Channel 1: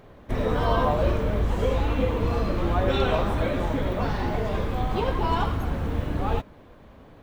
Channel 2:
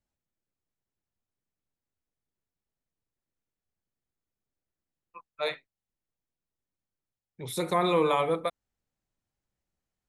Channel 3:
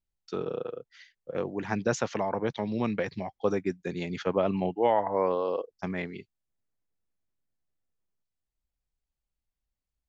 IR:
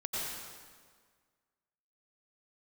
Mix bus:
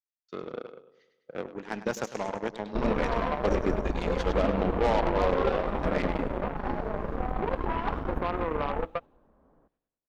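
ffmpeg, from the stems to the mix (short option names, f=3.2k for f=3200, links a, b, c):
-filter_complex "[0:a]bandreject=f=60:t=h:w=6,bandreject=f=120:t=h:w=6,adelay=2450,volume=0.5dB,asplit=2[a][b];[b]volume=-21dB[c];[1:a]highpass=320,adelay=500,volume=1.5dB[d];[2:a]agate=range=-33dB:threshold=-47dB:ratio=3:detection=peak,asoftclip=type=tanh:threshold=-19.5dB,volume=0.5dB,asplit=2[e][f];[f]volume=-7.5dB[g];[a][d]amix=inputs=2:normalize=0,lowpass=f=1.4k:w=0.5412,lowpass=f=1.4k:w=1.3066,alimiter=limit=-17.5dB:level=0:latency=1:release=221,volume=0dB[h];[c][g]amix=inputs=2:normalize=0,aecho=0:1:102|204|306|408|510|612|714|816:1|0.52|0.27|0.141|0.0731|0.038|0.0198|0.0103[i];[e][h][i]amix=inputs=3:normalize=0,equalizer=f=99:w=2.7:g=-14.5,aeval=exprs='0.2*(cos(1*acos(clip(val(0)/0.2,-1,1)))-cos(1*PI/2))+0.0224*(cos(7*acos(clip(val(0)/0.2,-1,1)))-cos(7*PI/2))':c=same"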